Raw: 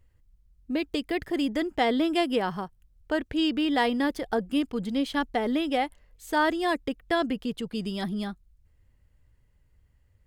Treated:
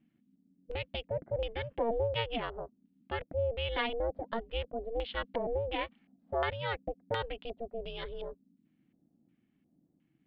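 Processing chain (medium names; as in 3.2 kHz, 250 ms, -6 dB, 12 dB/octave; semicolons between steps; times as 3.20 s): Chebyshev low-pass 4.3 kHz, order 4; ring modulator 230 Hz; LFO low-pass square 1.4 Hz 640–3000 Hz; trim -6.5 dB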